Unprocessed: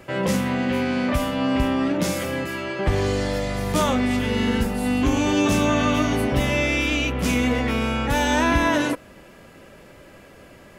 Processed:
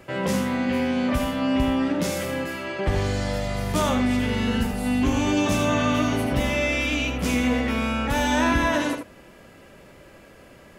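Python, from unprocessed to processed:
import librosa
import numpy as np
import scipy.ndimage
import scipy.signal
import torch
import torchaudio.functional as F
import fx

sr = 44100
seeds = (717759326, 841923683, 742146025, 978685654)

y = x + 10.0 ** (-7.5 / 20.0) * np.pad(x, (int(80 * sr / 1000.0), 0))[:len(x)]
y = y * librosa.db_to_amplitude(-2.5)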